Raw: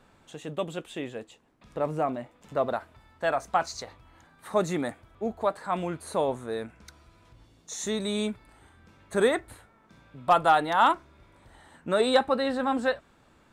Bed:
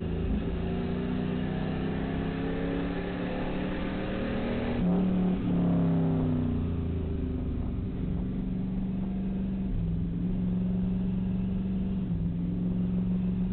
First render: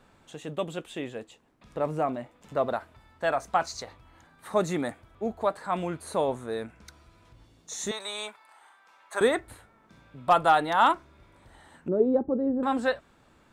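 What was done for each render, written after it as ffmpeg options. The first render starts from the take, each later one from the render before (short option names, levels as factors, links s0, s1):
-filter_complex "[0:a]asettb=1/sr,asplit=3[s0][s1][s2];[s0]atrim=end=7.914[s3];[s1]atrim=start=7.91:end=9.21,asetpts=PTS-STARTPTS,afade=t=in:d=0.004:c=qsin,afade=t=out:st=1.296:d=0.004:c=qsin,highpass=f=890:t=q:w=1.9[s4];[s2]atrim=start=9.206[s5];[s3][s4]acrossfade=d=0.004:c1=hsin:c2=qsin[s6];[s6][s5]acrossfade=d=0.004:c1=qsin:c2=hsin,asettb=1/sr,asplit=3[s7][s8][s9];[s7]atrim=end=11.884[s10];[s8]atrim=start=11.88:end=12.63,asetpts=PTS-STARTPTS,afade=t=in:d=0.004:c=qsin,afade=t=out:st=0.746:d=0.004:c=qsin,lowpass=f=360:t=q:w=2[s11];[s9]atrim=start=12.626[s12];[s10][s11]acrossfade=d=0.004:c1=hsin:c2=qsin[s13];[s13][s12]acrossfade=d=0.004:c1=qsin:c2=hsin"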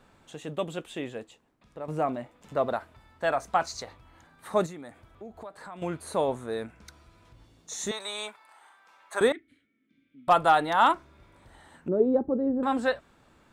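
-filter_complex "[0:a]asettb=1/sr,asplit=3[s0][s1][s2];[s0]atrim=end=4.664[s3];[s1]atrim=start=4.66:end=5.82,asetpts=PTS-STARTPTS,afade=t=in:d=0.004:c=qsin,afade=t=out:st=1.156:d=0.004:c=qsin,acompressor=threshold=0.00891:ratio=4:attack=3.2:release=140:knee=1:detection=peak[s4];[s2]atrim=start=5.816[s5];[s3][s4]acrossfade=d=0.004:c1=hsin:c2=qsin[s6];[s6][s5]acrossfade=d=0.004:c1=qsin:c2=hsin,asettb=1/sr,asplit=3[s7][s8][s9];[s7]atrim=end=9.324[s10];[s8]atrim=start=9.32:end=10.28,asetpts=PTS-STARTPTS,afade=t=in:d=0.004:c=qsin,afade=t=out:st=0.956:d=0.004:c=qsin,asplit=3[s11][s12][s13];[s11]bandpass=f=270:t=q:w=8,volume=1[s14];[s12]bandpass=f=2290:t=q:w=8,volume=0.501[s15];[s13]bandpass=f=3010:t=q:w=8,volume=0.355[s16];[s14][s15][s16]amix=inputs=3:normalize=0[s17];[s9]atrim=start=10.276[s18];[s10][s17]acrossfade=d=0.004:c1=hsin:c2=qsin[s19];[s19][s18]acrossfade=d=0.004:c1=qsin:c2=hsin,asplit=2[s20][s21];[s20]atrim=end=1.88,asetpts=PTS-STARTPTS,afade=t=out:st=1.16:d=0.72:silence=0.266073[s22];[s21]atrim=start=1.88,asetpts=PTS-STARTPTS,afade=t=in:d=0.004:c=hsin:silence=0.266073[s23];[s22][s23]concat=n=2:v=0:a=1"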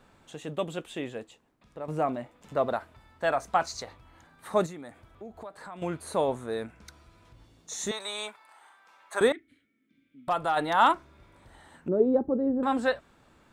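-filter_complex "[0:a]asplit=3[s0][s1][s2];[s0]afade=t=out:st=9.34:d=0.02[s3];[s1]acompressor=threshold=0.0178:ratio=1.5:attack=3.2:release=140:knee=1:detection=peak,afade=t=in:st=9.34:d=0.02,afade=t=out:st=10.56:d=0.02[s4];[s2]afade=t=in:st=10.56:d=0.02[s5];[s3][s4][s5]amix=inputs=3:normalize=0"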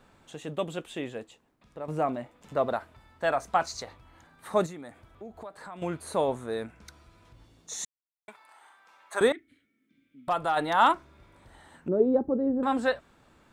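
-filter_complex "[0:a]asplit=3[s0][s1][s2];[s0]atrim=end=7.85,asetpts=PTS-STARTPTS,afade=t=out:st=7.846:d=0.004:c=hsin[s3];[s1]atrim=start=7.85:end=8.28,asetpts=PTS-STARTPTS,volume=0[s4];[s2]atrim=start=8.28,asetpts=PTS-STARTPTS,afade=t=in:d=0.004:c=hsin[s5];[s3][s4][s5]concat=n=3:v=0:a=1"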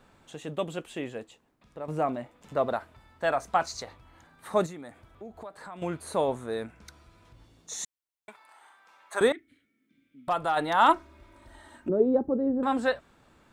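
-filter_complex "[0:a]asettb=1/sr,asplit=3[s0][s1][s2];[s0]atrim=end=0.734[s3];[s1]atrim=start=0.73:end=1.19,asetpts=PTS-STARTPTS,afade=t=in:d=0.004:c=qsin,afade=t=out:st=0.456:d=0.004:c=qsin,bandreject=f=3600:w=12[s4];[s2]atrim=start=1.186[s5];[s3][s4]acrossfade=d=0.004:c1=hsin:c2=qsin[s6];[s6][s5]acrossfade=d=0.004:c1=qsin:c2=hsin,asettb=1/sr,asplit=3[s7][s8][s9];[s7]atrim=end=10.884[s10];[s8]atrim=start=10.88:end=11.9,asetpts=PTS-STARTPTS,afade=t=in:d=0.004:c=qsin,afade=t=out:st=1.016:d=0.004:c=qsin,aecho=1:1:3.2:0.78,atrim=end_sample=44982[s11];[s9]atrim=start=11.896[s12];[s10][s11]acrossfade=d=0.004:c1=hsin:c2=qsin[s13];[s13][s12]acrossfade=d=0.004:c1=qsin:c2=hsin"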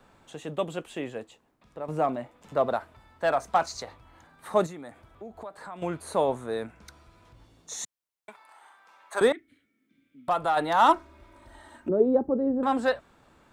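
-filter_complex "[0:a]acrossover=split=150|1100|2200[s0][s1][s2][s3];[s1]crystalizer=i=9.5:c=0[s4];[s2]asoftclip=type=hard:threshold=0.0224[s5];[s0][s4][s5][s3]amix=inputs=4:normalize=0"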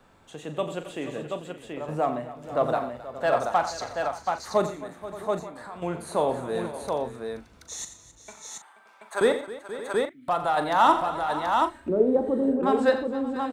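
-filter_complex "[0:a]asplit=2[s0][s1];[s1]adelay=40,volume=0.282[s2];[s0][s2]amix=inputs=2:normalize=0,aecho=1:1:88|121|266|480|574|730:0.251|0.112|0.141|0.178|0.133|0.631"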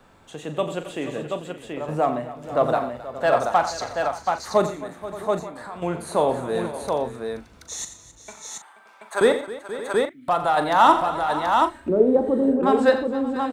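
-af "volume=1.58"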